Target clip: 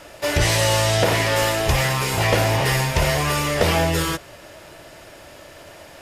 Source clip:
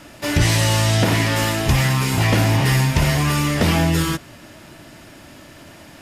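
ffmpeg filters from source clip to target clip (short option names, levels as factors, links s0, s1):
-af "equalizer=f=125:t=o:w=1:g=-4,equalizer=f=250:t=o:w=1:g=-11,equalizer=f=500:t=o:w=1:g=8"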